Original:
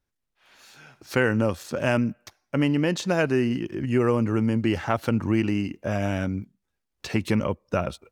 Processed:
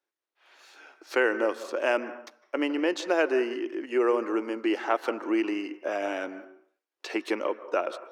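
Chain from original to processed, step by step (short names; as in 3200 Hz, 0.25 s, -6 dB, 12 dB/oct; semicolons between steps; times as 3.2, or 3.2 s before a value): elliptic high-pass 320 Hz, stop band 70 dB; high shelf 7400 Hz -11.5 dB; on a send: reverb RT60 0.55 s, pre-delay 0.143 s, DRR 13.5 dB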